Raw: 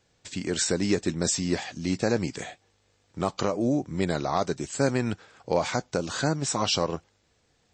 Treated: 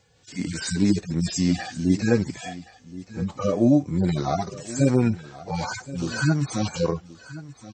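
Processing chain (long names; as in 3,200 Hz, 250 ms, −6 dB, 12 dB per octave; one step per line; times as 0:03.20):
harmonic-percussive split with one part muted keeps harmonic
single-tap delay 1,075 ms −17 dB
level +8 dB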